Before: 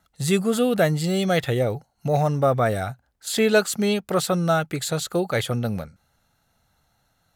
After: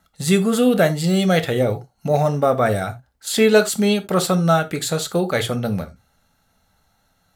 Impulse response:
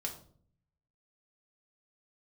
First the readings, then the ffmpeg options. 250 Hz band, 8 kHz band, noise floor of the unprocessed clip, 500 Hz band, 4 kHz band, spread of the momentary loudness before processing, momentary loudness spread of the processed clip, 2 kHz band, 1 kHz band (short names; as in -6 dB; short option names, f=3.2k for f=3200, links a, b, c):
+5.0 dB, +3.5 dB, -69 dBFS, +4.0 dB, +3.5 dB, 9 LU, 9 LU, +3.0 dB, +3.5 dB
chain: -filter_complex "[0:a]asplit=2[a][b];[1:a]atrim=start_sample=2205,atrim=end_sample=3969[c];[b][c]afir=irnorm=-1:irlink=0,volume=-0.5dB[d];[a][d]amix=inputs=2:normalize=0,volume=-1.5dB"